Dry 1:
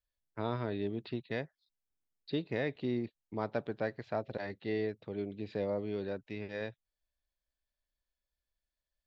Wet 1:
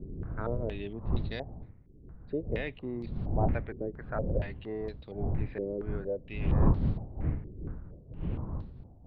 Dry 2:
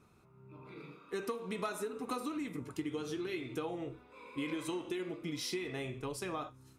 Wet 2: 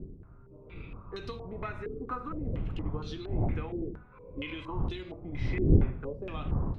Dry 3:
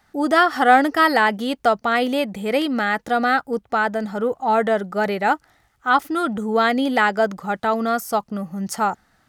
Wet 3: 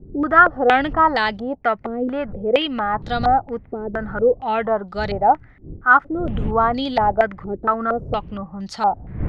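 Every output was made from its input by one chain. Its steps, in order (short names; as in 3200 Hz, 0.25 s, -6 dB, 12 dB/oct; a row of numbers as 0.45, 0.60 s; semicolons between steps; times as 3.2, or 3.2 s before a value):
wind noise 110 Hz -29 dBFS; stepped low-pass 4.3 Hz 380–4100 Hz; gain -4 dB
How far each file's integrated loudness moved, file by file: +3.5, +5.5, +0.5 LU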